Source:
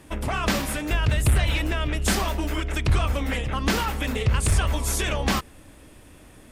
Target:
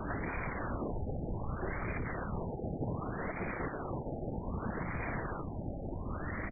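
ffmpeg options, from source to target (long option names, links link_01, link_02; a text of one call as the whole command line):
ffmpeg -i in.wav -filter_complex "[0:a]aeval=exprs='(tanh(44.7*val(0)+0.55)-tanh(0.55))/44.7':channel_layout=same,equalizer=frequency=125:width_type=o:width=0.33:gain=-7,equalizer=frequency=400:width_type=o:width=0.33:gain=-12,equalizer=frequency=1250:width_type=o:width=0.33:gain=6,equalizer=frequency=2000:width_type=o:width=0.33:gain=10,asettb=1/sr,asplit=3[link_01][link_02][link_03];[link_01]atrim=end=2.494[link_04];[link_02]atrim=start=2.49:end=4.86,asetpts=PTS-STARTPTS,afade=type=in:duration=0.004:curve=qsin,afade=type=out:start_time=2.366:duration=0.004:curve=qsin,acontrast=74[link_05];[link_03]atrim=start=4.856[link_06];[link_04][link_05]acrossfade=duration=0.004:curve1=hsin:curve2=qsin[link_07];[link_07][link_06]acrossfade=duration=0.004:curve1=qsin:curve2=hsin,highshelf=frequency=3100:gain=-9,aeval=exprs='0.106*sin(PI/2*8.91*val(0)/0.106)':channel_layout=same,acrossover=split=560|1400[link_08][link_09][link_10];[link_08]acompressor=threshold=-30dB:ratio=4[link_11];[link_09]acompressor=threshold=-39dB:ratio=4[link_12];[link_10]acompressor=threshold=-33dB:ratio=4[link_13];[link_11][link_12][link_13]amix=inputs=3:normalize=0,afftfilt=real='hypot(re,im)*cos(2*PI*random(0))':imag='hypot(re,im)*sin(2*PI*random(1))':win_size=512:overlap=0.75,asplit=5[link_14][link_15][link_16][link_17][link_18];[link_15]adelay=324,afreqshift=-120,volume=-11.5dB[link_19];[link_16]adelay=648,afreqshift=-240,volume=-19.9dB[link_20];[link_17]adelay=972,afreqshift=-360,volume=-28.3dB[link_21];[link_18]adelay=1296,afreqshift=-480,volume=-36.7dB[link_22];[link_14][link_19][link_20][link_21][link_22]amix=inputs=5:normalize=0,afwtdn=0.00708,afftfilt=real='re*lt(b*sr/1024,840*pow(2500/840,0.5+0.5*sin(2*PI*0.65*pts/sr)))':imag='im*lt(b*sr/1024,840*pow(2500/840,0.5+0.5*sin(2*PI*0.65*pts/sr)))':win_size=1024:overlap=0.75" out.wav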